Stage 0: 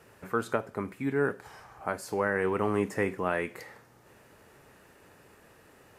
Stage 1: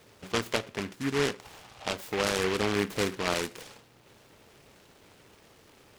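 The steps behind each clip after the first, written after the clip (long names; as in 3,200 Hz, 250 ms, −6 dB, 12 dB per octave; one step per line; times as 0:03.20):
short delay modulated by noise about 1,700 Hz, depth 0.17 ms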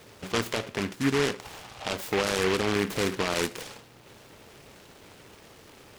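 brickwall limiter −21.5 dBFS, peak gain reduction 10.5 dB
level +6 dB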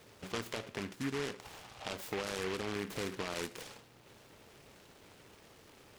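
downward compressor 2 to 1, threshold −29 dBFS, peak gain reduction 5.5 dB
level −7.5 dB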